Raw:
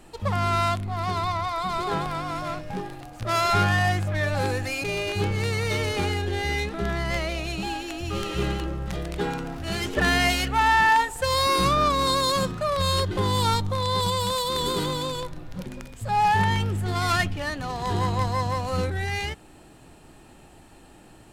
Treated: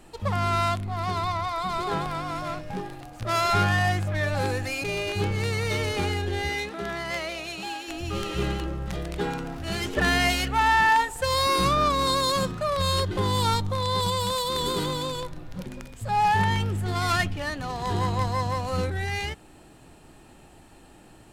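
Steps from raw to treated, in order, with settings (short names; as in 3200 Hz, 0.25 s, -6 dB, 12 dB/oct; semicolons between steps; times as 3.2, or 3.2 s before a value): 6.48–7.87 HPF 260 Hz -> 640 Hz 6 dB/oct; gain -1 dB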